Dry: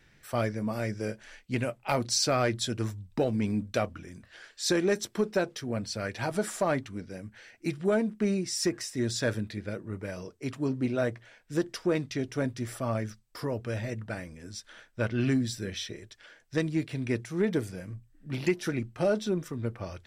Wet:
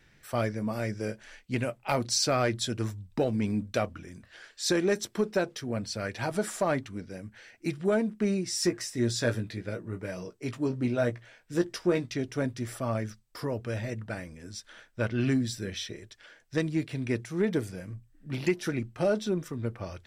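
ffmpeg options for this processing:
ffmpeg -i in.wav -filter_complex "[0:a]asettb=1/sr,asplit=3[link_01][link_02][link_03];[link_01]atrim=end=8.454[link_04];[link_02]atrim=start=8.45:end=12.14,asetpts=PTS-STARTPTS,afade=type=in:duration=0.004:curve=qsin,afade=type=out:start_time=3.686:duration=0.004:curve=qsin,asplit=2[link_05][link_06];[link_06]adelay=17,volume=-8dB[link_07];[link_05][link_07]amix=inputs=2:normalize=0,atrim=end_sample=162729[link_08];[link_03]atrim=start=12.136[link_09];[link_04][link_08]acrossfade=duration=0.004:curve1=hsin:curve2=qsin[link_10];[link_10][link_09]acrossfade=duration=0.004:curve1=qsin:curve2=hsin" out.wav

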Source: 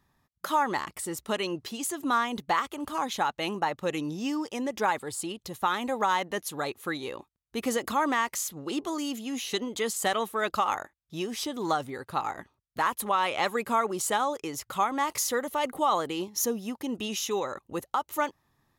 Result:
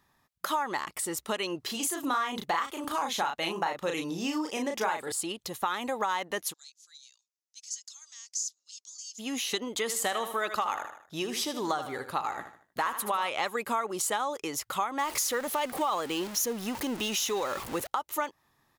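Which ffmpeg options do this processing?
ffmpeg -i in.wav -filter_complex "[0:a]asettb=1/sr,asplit=3[link_01][link_02][link_03];[link_01]atrim=end=1.654[link_04];[link_02]atrim=start=1.65:end=5.12,asetpts=PTS-STARTPTS,afade=type=in:duration=0.004:curve=qsin,afade=type=out:start_time=3.466:duration=0.004:curve=qsin,asplit=2[link_05][link_06];[link_06]adelay=36,volume=-4dB[link_07];[link_05][link_07]amix=inputs=2:normalize=0,atrim=end_sample=153027[link_08];[link_03]atrim=start=5.116[link_09];[link_04][link_08]acrossfade=duration=0.004:curve1=hsin:curve2=qsin[link_10];[link_10][link_09]acrossfade=duration=0.004:curve1=qsin:curve2=hsin,asplit=3[link_11][link_12][link_13];[link_11]afade=type=out:start_time=6.52:duration=0.02[link_14];[link_12]asuperpass=centerf=5900:order=4:qfactor=2.6,afade=type=in:start_time=6.52:duration=0.02,afade=type=out:start_time=9.18:duration=0.02[link_15];[link_13]afade=type=in:start_time=9.18:duration=0.02[link_16];[link_14][link_15][link_16]amix=inputs=3:normalize=0,asplit=3[link_17][link_18][link_19];[link_17]afade=type=out:start_time=9.87:duration=0.02[link_20];[link_18]aecho=1:1:77|154|231|308:0.282|0.107|0.0407|0.0155,afade=type=in:start_time=9.87:duration=0.02,afade=type=out:start_time=13.28:duration=0.02[link_21];[link_19]afade=type=in:start_time=13.28:duration=0.02[link_22];[link_20][link_21][link_22]amix=inputs=3:normalize=0,asettb=1/sr,asplit=3[link_23][link_24][link_25];[link_23]atrim=end=14.994[link_26];[link_24]atrim=start=14.99:end=17.87,asetpts=PTS-STARTPTS,afade=type=in:duration=0.004:curve=qsin,afade=type=out:start_time=2.876:duration=0.004:curve=qsin,aeval=exprs='val(0)+0.5*0.0178*sgn(val(0))':channel_layout=same[link_27];[link_25]atrim=start=17.866[link_28];[link_26][link_27]acrossfade=duration=0.004:curve1=hsin:curve2=qsin[link_29];[link_29][link_28]acrossfade=duration=0.004:curve1=qsin:curve2=hsin,lowshelf=frequency=300:gain=-9,acompressor=threshold=-32dB:ratio=3,volume=4dB" out.wav

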